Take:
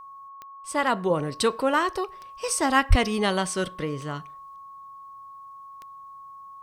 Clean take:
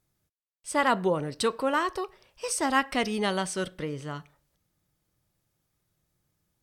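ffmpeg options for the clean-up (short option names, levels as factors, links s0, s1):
-filter_complex "[0:a]adeclick=t=4,bandreject=f=1100:w=30,asplit=3[s0][s1][s2];[s0]afade=t=out:st=2.89:d=0.02[s3];[s1]highpass=f=140:w=0.5412,highpass=f=140:w=1.3066,afade=t=in:st=2.89:d=0.02,afade=t=out:st=3.01:d=0.02[s4];[s2]afade=t=in:st=3.01:d=0.02[s5];[s3][s4][s5]amix=inputs=3:normalize=0,asetnsamples=n=441:p=0,asendcmd='1.1 volume volume -3.5dB',volume=1"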